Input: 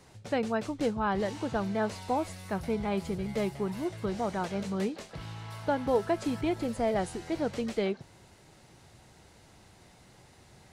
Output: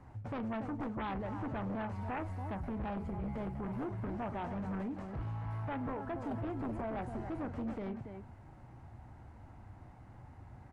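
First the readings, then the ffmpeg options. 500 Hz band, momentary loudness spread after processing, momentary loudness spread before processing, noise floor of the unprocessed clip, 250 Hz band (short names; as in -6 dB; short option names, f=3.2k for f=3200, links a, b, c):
-12.0 dB, 16 LU, 6 LU, -58 dBFS, -6.5 dB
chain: -af "alimiter=level_in=3dB:limit=-24dB:level=0:latency=1:release=191,volume=-3dB,firequalizer=gain_entry='entry(110,0);entry(170,-10);entry(260,-3);entry(410,-15);entry(810,-5);entry(3700,-29)':delay=0.05:min_phase=1,aecho=1:1:40.82|282.8:0.251|0.316,aeval=exprs='0.112*(cos(1*acos(clip(val(0)/0.112,-1,1)))-cos(1*PI/2))+0.0224*(cos(7*acos(clip(val(0)/0.112,-1,1)))-cos(7*PI/2))':c=same,volume=15.5dB"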